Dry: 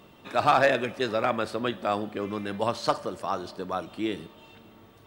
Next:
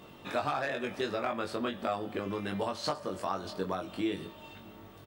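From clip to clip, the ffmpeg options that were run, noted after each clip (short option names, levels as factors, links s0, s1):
-filter_complex "[0:a]acompressor=threshold=0.0282:ratio=5,asplit=2[s0][s1];[s1]adelay=21,volume=0.668[s2];[s0][s2]amix=inputs=2:normalize=0"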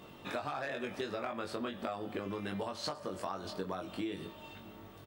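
-af "acompressor=threshold=0.0224:ratio=6,volume=0.891"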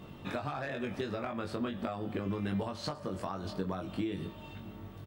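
-af "bass=f=250:g=10,treble=f=4000:g=-3"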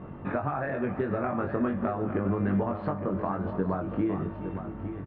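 -filter_complex "[0:a]lowpass=f=1800:w=0.5412,lowpass=f=1800:w=1.3066,asplit=2[s0][s1];[s1]aecho=0:1:418|861:0.2|0.316[s2];[s0][s2]amix=inputs=2:normalize=0,volume=2.24"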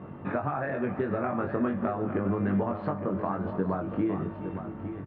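-af "highpass=86"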